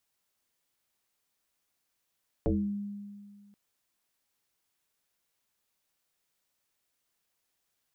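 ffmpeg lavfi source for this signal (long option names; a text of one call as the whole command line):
ffmpeg -f lavfi -i "aevalsrc='0.075*pow(10,-3*t/1.93)*sin(2*PI*203*t+3.5*pow(10,-3*t/0.45)*sin(2*PI*0.59*203*t))':duration=1.08:sample_rate=44100" out.wav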